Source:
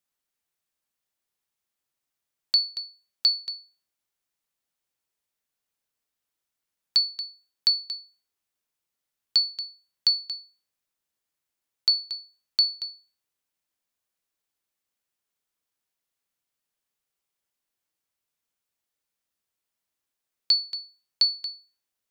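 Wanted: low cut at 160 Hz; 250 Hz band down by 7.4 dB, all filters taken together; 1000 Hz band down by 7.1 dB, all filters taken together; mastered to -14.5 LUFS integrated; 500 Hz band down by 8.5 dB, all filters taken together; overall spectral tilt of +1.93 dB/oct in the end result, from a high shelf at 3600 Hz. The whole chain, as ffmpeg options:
-af "highpass=160,equalizer=f=250:t=o:g=-6,equalizer=f=500:t=o:g=-7,equalizer=f=1k:t=o:g=-8,highshelf=f=3.6k:g=5.5,volume=7.5dB"

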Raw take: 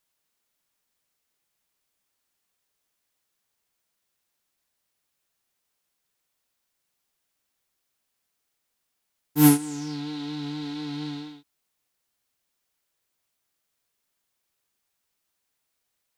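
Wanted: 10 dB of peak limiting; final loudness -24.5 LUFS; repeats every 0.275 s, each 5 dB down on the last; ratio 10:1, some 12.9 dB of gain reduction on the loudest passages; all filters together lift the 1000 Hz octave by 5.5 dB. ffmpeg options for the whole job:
-af "equalizer=f=1k:t=o:g=7,acompressor=threshold=-23dB:ratio=10,alimiter=level_in=1dB:limit=-24dB:level=0:latency=1,volume=-1dB,aecho=1:1:275|550|825|1100|1375|1650|1925:0.562|0.315|0.176|0.0988|0.0553|0.031|0.0173,volume=9dB"

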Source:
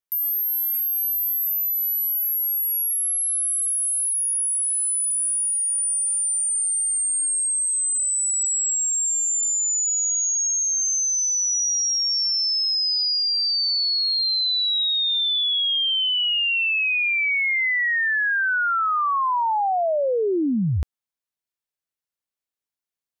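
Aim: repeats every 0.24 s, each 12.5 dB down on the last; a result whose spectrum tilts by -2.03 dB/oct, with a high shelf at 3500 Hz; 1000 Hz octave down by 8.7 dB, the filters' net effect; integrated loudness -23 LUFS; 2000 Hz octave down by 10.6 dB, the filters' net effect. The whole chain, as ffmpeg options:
-af "equalizer=f=1k:t=o:g=-8,equalizer=f=2k:t=o:g=-9,highshelf=f=3.5k:g=-7.5,aecho=1:1:240|480|720:0.237|0.0569|0.0137,volume=3dB"

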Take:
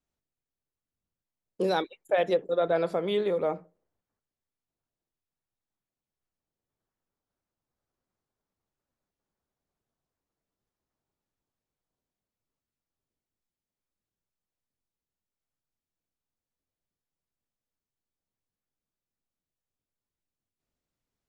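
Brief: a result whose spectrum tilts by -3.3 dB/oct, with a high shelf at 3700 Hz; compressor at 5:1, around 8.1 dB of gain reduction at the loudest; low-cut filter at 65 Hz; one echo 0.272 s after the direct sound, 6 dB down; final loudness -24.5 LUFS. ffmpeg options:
-af "highpass=65,highshelf=f=3.7k:g=7,acompressor=threshold=-29dB:ratio=5,aecho=1:1:272:0.501,volume=9dB"

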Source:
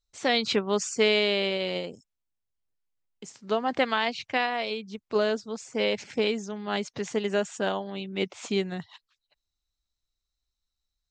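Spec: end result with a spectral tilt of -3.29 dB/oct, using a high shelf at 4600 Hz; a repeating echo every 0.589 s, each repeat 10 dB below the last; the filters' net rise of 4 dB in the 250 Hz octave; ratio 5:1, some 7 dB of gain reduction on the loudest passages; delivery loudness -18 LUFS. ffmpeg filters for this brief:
-af "equalizer=f=250:t=o:g=5,highshelf=f=4.6k:g=-3,acompressor=threshold=-25dB:ratio=5,aecho=1:1:589|1178|1767|2356:0.316|0.101|0.0324|0.0104,volume=13dB"

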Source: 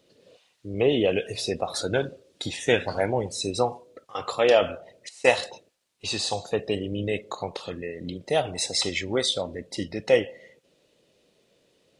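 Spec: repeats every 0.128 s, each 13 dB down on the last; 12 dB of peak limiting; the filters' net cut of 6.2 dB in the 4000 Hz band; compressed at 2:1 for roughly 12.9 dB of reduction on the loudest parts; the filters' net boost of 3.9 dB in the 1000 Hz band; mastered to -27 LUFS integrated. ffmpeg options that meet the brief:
-af "equalizer=f=1k:t=o:g=6,equalizer=f=4k:t=o:g=-8,acompressor=threshold=-37dB:ratio=2,alimiter=level_in=4dB:limit=-24dB:level=0:latency=1,volume=-4dB,aecho=1:1:128|256|384:0.224|0.0493|0.0108,volume=12.5dB"

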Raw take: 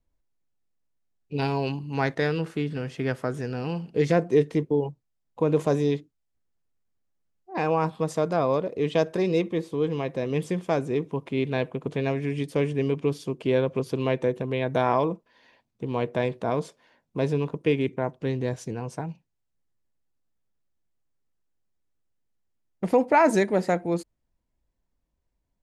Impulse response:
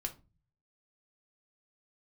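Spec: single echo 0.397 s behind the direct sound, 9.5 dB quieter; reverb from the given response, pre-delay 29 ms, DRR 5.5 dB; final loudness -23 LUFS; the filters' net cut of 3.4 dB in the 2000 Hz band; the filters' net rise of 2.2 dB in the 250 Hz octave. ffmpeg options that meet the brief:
-filter_complex "[0:a]equalizer=f=250:t=o:g=3,equalizer=f=2k:t=o:g=-4.5,aecho=1:1:397:0.335,asplit=2[a][b];[1:a]atrim=start_sample=2205,adelay=29[c];[b][c]afir=irnorm=-1:irlink=0,volume=-5dB[d];[a][d]amix=inputs=2:normalize=0,volume=1dB"

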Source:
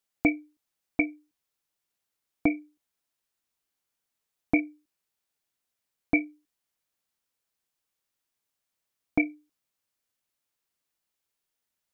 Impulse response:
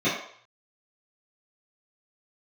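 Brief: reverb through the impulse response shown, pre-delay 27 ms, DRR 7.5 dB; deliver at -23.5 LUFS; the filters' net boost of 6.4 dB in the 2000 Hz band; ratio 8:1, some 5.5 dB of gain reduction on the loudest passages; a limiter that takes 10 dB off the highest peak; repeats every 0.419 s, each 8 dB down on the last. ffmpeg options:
-filter_complex "[0:a]equalizer=f=2k:t=o:g=7.5,acompressor=threshold=-21dB:ratio=8,alimiter=limit=-21dB:level=0:latency=1,aecho=1:1:419|838|1257|1676|2095:0.398|0.159|0.0637|0.0255|0.0102,asplit=2[a][b];[1:a]atrim=start_sample=2205,adelay=27[c];[b][c]afir=irnorm=-1:irlink=0,volume=-22.5dB[d];[a][d]amix=inputs=2:normalize=0,volume=15.5dB"

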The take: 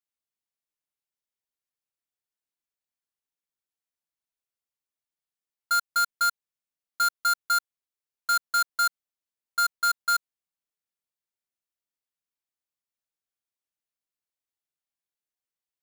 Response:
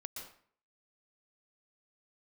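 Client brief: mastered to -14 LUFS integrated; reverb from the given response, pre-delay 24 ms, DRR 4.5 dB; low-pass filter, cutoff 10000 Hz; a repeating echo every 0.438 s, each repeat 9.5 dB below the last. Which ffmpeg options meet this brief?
-filter_complex "[0:a]lowpass=10k,aecho=1:1:438|876|1314|1752:0.335|0.111|0.0365|0.012,asplit=2[a][b];[1:a]atrim=start_sample=2205,adelay=24[c];[b][c]afir=irnorm=-1:irlink=0,volume=-2dB[d];[a][d]amix=inputs=2:normalize=0,volume=13dB"

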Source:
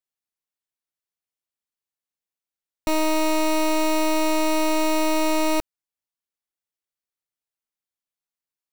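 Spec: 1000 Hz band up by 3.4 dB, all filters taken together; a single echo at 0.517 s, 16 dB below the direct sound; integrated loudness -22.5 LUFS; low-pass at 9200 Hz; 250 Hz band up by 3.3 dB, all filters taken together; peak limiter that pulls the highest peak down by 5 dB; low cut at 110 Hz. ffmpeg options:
-af "highpass=110,lowpass=9.2k,equalizer=f=250:t=o:g=4.5,equalizer=f=1k:t=o:g=3.5,alimiter=limit=-16.5dB:level=0:latency=1,aecho=1:1:517:0.158,volume=2dB"

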